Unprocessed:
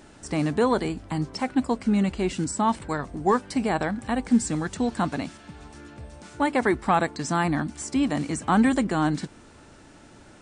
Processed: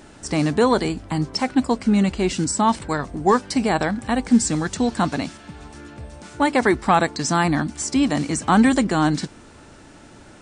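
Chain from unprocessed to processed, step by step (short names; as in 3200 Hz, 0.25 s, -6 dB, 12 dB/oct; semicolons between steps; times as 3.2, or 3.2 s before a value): dynamic EQ 5300 Hz, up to +6 dB, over -47 dBFS, Q 1.1; gain +4.5 dB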